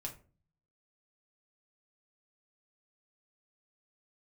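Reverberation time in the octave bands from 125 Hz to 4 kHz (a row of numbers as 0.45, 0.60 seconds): 0.85, 0.60, 0.45, 0.35, 0.30, 0.20 seconds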